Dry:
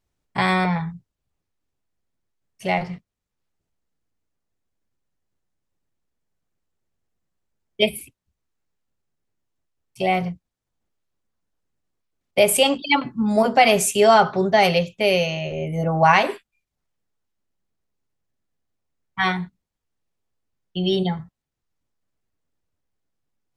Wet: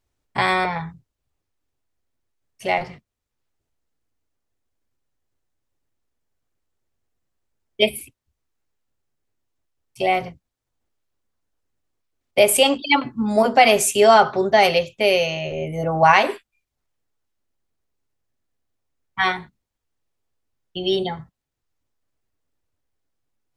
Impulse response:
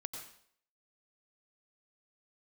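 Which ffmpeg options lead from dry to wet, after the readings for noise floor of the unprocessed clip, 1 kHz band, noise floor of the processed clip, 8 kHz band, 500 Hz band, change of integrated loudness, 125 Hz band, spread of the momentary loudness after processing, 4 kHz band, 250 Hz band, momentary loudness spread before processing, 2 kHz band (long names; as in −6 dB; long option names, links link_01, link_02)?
−83 dBFS, +1.5 dB, −81 dBFS, +1.5 dB, +1.5 dB, +1.0 dB, −5.5 dB, 17 LU, +1.5 dB, −2.5 dB, 17 LU, +1.5 dB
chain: -af "equalizer=frequency=180:width_type=o:width=0.22:gain=-14,volume=1.5dB"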